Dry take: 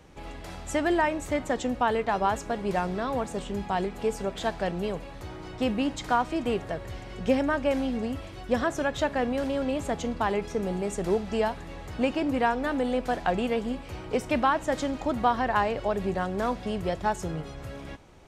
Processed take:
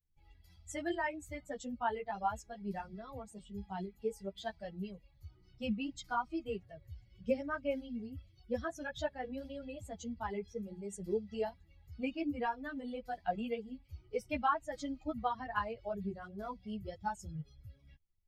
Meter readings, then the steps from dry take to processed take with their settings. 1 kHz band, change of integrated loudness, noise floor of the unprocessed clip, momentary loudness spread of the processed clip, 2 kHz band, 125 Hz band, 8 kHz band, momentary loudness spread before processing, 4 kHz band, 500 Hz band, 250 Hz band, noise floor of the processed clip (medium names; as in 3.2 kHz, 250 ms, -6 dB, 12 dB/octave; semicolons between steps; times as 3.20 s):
-10.5 dB, -11.5 dB, -41 dBFS, 12 LU, -11.5 dB, -12.0 dB, -11.5 dB, 11 LU, -13.0 dB, -12.0 dB, -12.0 dB, -66 dBFS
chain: expander on every frequency bin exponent 2; three-phase chorus; trim -3 dB